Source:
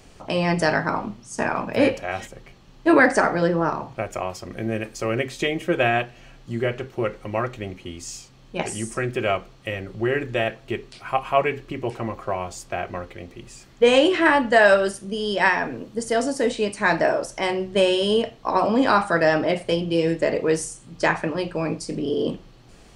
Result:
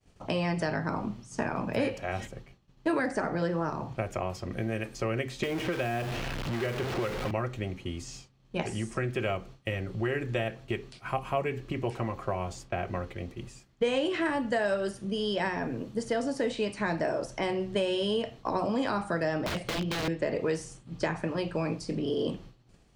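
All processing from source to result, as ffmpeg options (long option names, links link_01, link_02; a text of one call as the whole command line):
ffmpeg -i in.wav -filter_complex "[0:a]asettb=1/sr,asplit=3[link_01][link_02][link_03];[link_01]atrim=end=5.434[link_04];[link_02]atrim=start=5.43:end=7.31,asetpts=PTS-STARTPTS,afade=type=in:duration=0.004:curve=qsin,afade=type=out:start_time=1.876:duration=0.004:curve=qsin,aeval=exprs='val(0)+0.5*0.0668*sgn(val(0))':channel_layout=same,acrossover=split=270|1300|5900[link_05][link_06][link_07][link_08];[link_05]acompressor=threshold=-37dB:ratio=3[link_09];[link_06]acompressor=threshold=-26dB:ratio=3[link_10];[link_07]acompressor=threshold=-32dB:ratio=3[link_11];[link_08]acompressor=threshold=-44dB:ratio=3[link_12];[link_09][link_10][link_11][link_12]amix=inputs=4:normalize=0[link_13];[link_03]atrim=start=7.306[link_14];[link_04][link_13]acrossfade=duration=0.004:curve1=hsin:curve2=qsin[link_15];[link_15][link_14]acrossfade=duration=0.004:curve1=qsin:curve2=hsin,asettb=1/sr,asplit=3[link_16][link_17][link_18];[link_16]atrim=end=19.464[link_19];[link_17]atrim=start=19.46:end=20.08,asetpts=PTS-STARTPTS,afade=type=in:duration=0.004:curve=qsin,afade=type=out:start_time=0.616:duration=0.004:curve=qsin,highshelf=frequency=2900:gain=10,aeval=exprs='(mod(8.41*val(0)+1,2)-1)/8.41':channel_layout=same[link_20];[link_18]atrim=start=20.076[link_21];[link_19][link_20]acrossfade=duration=0.004:curve1=hsin:curve2=qsin[link_22];[link_22][link_21]acrossfade=duration=0.004:curve1=qsin:curve2=hsin,equalizer=frequency=100:width=0.53:gain=6.5,agate=range=-33dB:threshold=-36dB:ratio=3:detection=peak,acrossover=split=580|5100[link_23][link_24][link_25];[link_23]acompressor=threshold=-27dB:ratio=4[link_26];[link_24]acompressor=threshold=-30dB:ratio=4[link_27];[link_25]acompressor=threshold=-50dB:ratio=4[link_28];[link_26][link_27][link_28]amix=inputs=3:normalize=0,volume=-3dB" out.wav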